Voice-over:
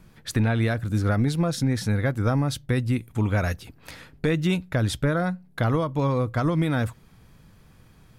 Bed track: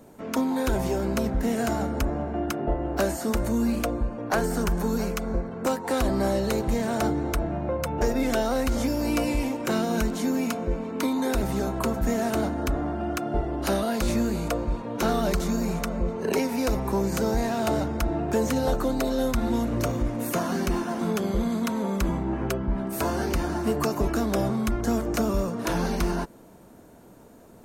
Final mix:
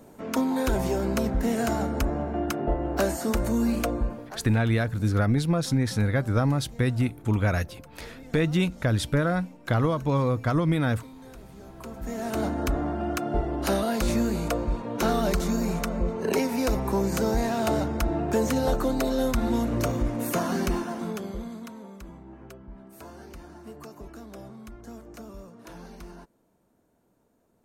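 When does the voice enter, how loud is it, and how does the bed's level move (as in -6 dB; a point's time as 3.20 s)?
4.10 s, -0.5 dB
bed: 4.11 s 0 dB
4.41 s -21 dB
11.55 s -21 dB
12.49 s 0 dB
20.66 s 0 dB
22.00 s -18 dB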